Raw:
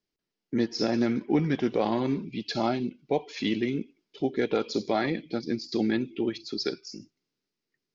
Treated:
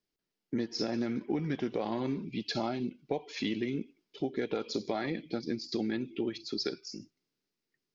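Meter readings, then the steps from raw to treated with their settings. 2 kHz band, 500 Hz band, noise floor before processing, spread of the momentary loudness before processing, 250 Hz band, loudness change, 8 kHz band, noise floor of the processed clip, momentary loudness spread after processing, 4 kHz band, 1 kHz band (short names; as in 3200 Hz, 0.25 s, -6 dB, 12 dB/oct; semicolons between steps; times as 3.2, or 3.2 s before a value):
-6.0 dB, -6.5 dB, under -85 dBFS, 7 LU, -6.0 dB, -6.0 dB, n/a, under -85 dBFS, 5 LU, -3.5 dB, -7.5 dB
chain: compressor, threshold -27 dBFS, peak gain reduction 8.5 dB; gain -1.5 dB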